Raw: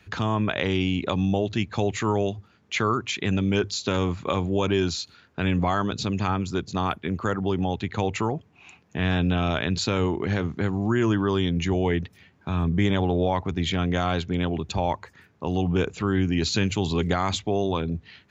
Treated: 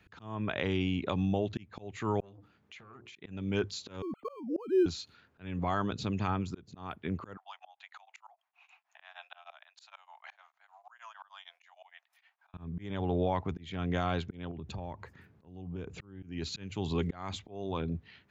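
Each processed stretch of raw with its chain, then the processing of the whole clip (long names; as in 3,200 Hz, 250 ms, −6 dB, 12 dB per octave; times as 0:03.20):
0:02.20–0:03.16: mains-hum notches 60/120/180/240/300/360/420/480/540 Hz + downward compressor 10 to 1, threshold −39 dBFS + saturating transformer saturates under 790 Hz
0:04.02–0:04.86: three sine waves on the formant tracks + low-shelf EQ 450 Hz +9 dB + linearly interpolated sample-rate reduction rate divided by 8×
0:07.37–0:12.54: Butterworth high-pass 670 Hz 72 dB per octave + tremolo along a rectified sine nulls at 6.5 Hz
0:14.51–0:16.23: low-shelf EQ 390 Hz +9 dB + downward compressor, threshold −30 dBFS
whole clip: parametric band 6,300 Hz −6 dB 1.5 octaves; volume swells 351 ms; level −6.5 dB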